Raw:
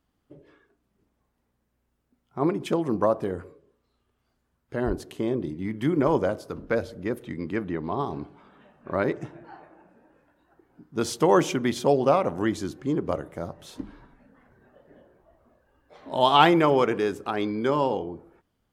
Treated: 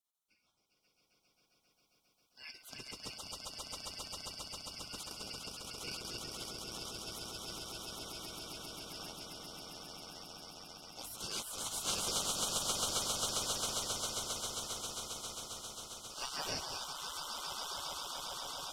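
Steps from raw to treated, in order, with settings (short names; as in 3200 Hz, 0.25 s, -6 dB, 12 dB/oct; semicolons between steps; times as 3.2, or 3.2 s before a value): four-band scrambler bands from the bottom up 3142; swelling echo 0.134 s, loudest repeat 8, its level -3.5 dB; spectral gate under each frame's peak -30 dB weak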